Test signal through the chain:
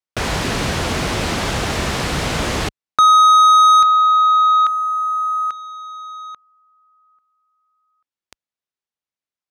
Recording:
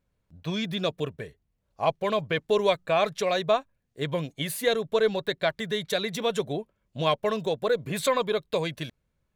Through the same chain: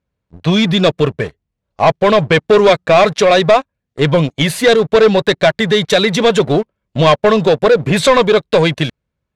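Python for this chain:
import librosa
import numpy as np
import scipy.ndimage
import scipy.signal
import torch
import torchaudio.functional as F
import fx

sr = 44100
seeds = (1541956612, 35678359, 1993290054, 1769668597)

y = scipy.signal.sosfilt(scipy.signal.butter(2, 45.0, 'highpass', fs=sr, output='sos'), x)
y = fx.leveller(y, sr, passes=3)
y = fx.air_absorb(y, sr, metres=67.0)
y = y * 10.0 ** (7.5 / 20.0)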